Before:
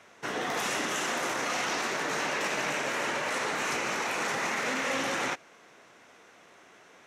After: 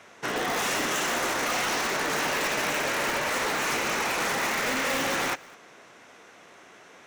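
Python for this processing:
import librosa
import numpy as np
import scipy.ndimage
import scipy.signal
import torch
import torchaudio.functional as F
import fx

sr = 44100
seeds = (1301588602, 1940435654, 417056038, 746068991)

p1 = (np.mod(10.0 ** (24.5 / 20.0) * x + 1.0, 2.0) - 1.0) / 10.0 ** (24.5 / 20.0)
p2 = x + (p1 * librosa.db_to_amplitude(-3.5))
y = p2 + 10.0 ** (-23.0 / 20.0) * np.pad(p2, (int(206 * sr / 1000.0), 0))[:len(p2)]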